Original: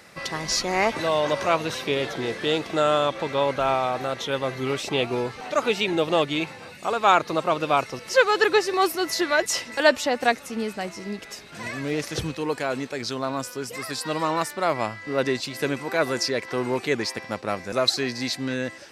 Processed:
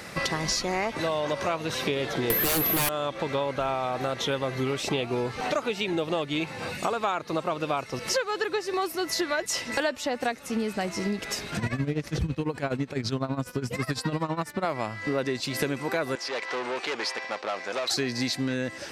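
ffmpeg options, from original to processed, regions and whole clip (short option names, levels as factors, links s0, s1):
-filter_complex "[0:a]asettb=1/sr,asplit=3[s0][s1][s2];[s0]atrim=end=2.304[s3];[s1]atrim=start=2.3:end=2.89,asetpts=PTS-STARTPTS,afade=t=in:d=0.004:c=qsin,afade=t=out:st=0.586:d=0.004:c=qsin,aeval=exprs='val(0)+0.0355*sin(2*PI*12000*n/s)':c=same,aeval=exprs='0.355*sin(PI/2*6.31*val(0)/0.355)':c=same[s4];[s2]atrim=start=2.886[s5];[s3][s4]acrossfade=d=0.004:c1=hsin:c2=qsin[s6];[s6][s5]acrossfade=d=0.004:c1=qsin:c2=hsin,asettb=1/sr,asplit=3[s7][s8][s9];[s7]atrim=end=11.574[s10];[s8]atrim=start=11.57:end=14.65,asetpts=PTS-STARTPTS,afade=t=in:d=0.004:c=qsin,afade=t=out:st=3.076:d=0.004:c=qsin,bass=f=250:g=10,treble=f=4000:g=-5,tremolo=f=12:d=0.82[s11];[s9]atrim=start=14.646[s12];[s10][s11]acrossfade=d=0.004:c1=hsin:c2=qsin[s13];[s13][s12]acrossfade=d=0.004:c1=qsin:c2=hsin,asettb=1/sr,asplit=3[s14][s15][s16];[s14]atrim=end=16.154[s17];[s15]atrim=start=16.15:end=17.91,asetpts=PTS-STARTPTS,afade=t=in:d=0.004:c=qsin,afade=t=out:st=1.756:d=0.004:c=qsin,aeval=exprs='(tanh(28.2*val(0)+0.65)-tanh(0.65))/28.2':c=same,highpass=570,lowpass=5600[s18];[s16]atrim=start=17.906[s19];[s17][s18]acrossfade=d=0.004:c1=hsin:c2=qsin[s20];[s20][s19]acrossfade=d=0.004:c1=qsin:c2=hsin,lowshelf=f=240:g=4,acompressor=threshold=0.0224:ratio=8,volume=2.51"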